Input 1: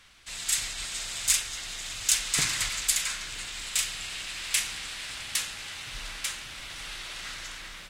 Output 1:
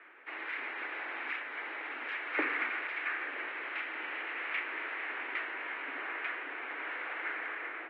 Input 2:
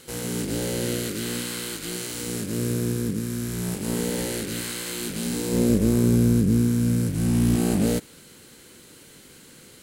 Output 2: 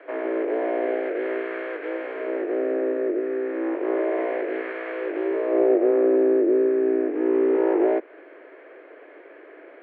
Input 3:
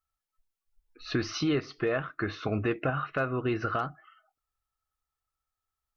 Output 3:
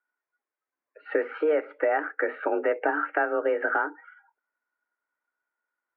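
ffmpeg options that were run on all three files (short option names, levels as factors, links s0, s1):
-filter_complex "[0:a]asplit=2[s0][s1];[s1]acompressor=threshold=0.0316:ratio=6,volume=1.26[s2];[s0][s2]amix=inputs=2:normalize=0,highpass=f=160:t=q:w=0.5412,highpass=f=160:t=q:w=1.307,lowpass=f=2000:t=q:w=0.5176,lowpass=f=2000:t=q:w=0.7071,lowpass=f=2000:t=q:w=1.932,afreqshift=150"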